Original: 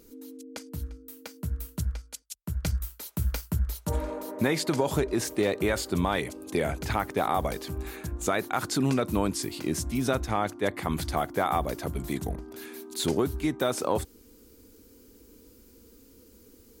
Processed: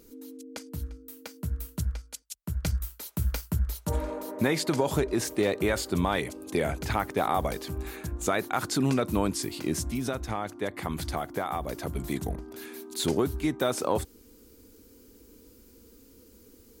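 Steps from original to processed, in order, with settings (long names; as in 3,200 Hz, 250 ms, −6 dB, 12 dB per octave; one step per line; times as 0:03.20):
0:09.91–0:11.93: downward compressor 3 to 1, threshold −28 dBFS, peak gain reduction 6 dB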